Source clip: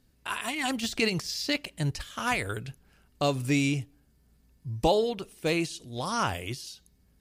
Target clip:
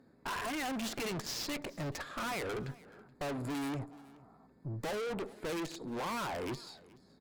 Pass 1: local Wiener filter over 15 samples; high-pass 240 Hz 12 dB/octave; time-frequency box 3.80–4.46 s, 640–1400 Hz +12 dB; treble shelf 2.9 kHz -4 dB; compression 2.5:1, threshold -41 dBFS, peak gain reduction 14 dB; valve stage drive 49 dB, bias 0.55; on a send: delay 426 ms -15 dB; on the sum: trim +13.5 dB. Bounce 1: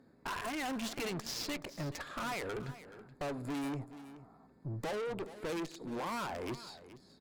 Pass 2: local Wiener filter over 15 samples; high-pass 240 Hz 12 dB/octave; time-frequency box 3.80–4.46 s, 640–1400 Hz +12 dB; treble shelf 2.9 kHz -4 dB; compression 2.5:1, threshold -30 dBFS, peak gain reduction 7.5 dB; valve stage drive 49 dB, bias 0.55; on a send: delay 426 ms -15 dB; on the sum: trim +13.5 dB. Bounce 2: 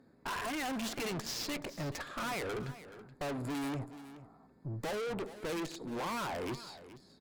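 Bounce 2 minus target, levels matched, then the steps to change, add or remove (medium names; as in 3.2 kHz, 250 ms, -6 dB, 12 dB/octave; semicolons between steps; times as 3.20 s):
echo-to-direct +7 dB
change: delay 426 ms -22 dB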